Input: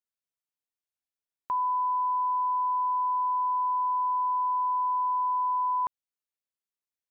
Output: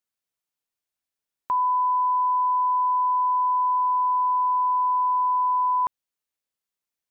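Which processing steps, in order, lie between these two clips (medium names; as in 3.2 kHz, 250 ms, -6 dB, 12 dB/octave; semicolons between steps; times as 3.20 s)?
1.57–3.78 s: tone controls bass +14 dB, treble +2 dB; trim +5 dB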